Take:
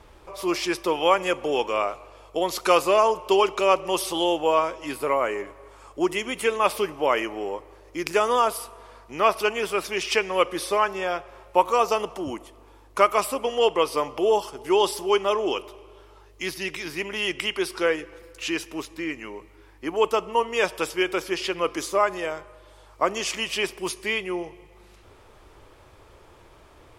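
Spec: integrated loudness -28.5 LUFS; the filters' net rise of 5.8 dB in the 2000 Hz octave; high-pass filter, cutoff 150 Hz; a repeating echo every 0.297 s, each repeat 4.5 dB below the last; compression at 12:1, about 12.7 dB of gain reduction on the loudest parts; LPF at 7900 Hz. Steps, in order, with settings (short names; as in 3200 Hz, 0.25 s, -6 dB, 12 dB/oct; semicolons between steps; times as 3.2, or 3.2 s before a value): HPF 150 Hz; LPF 7900 Hz; bell 2000 Hz +7.5 dB; compressor 12:1, threshold -24 dBFS; feedback echo 0.297 s, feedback 60%, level -4.5 dB; gain -0.5 dB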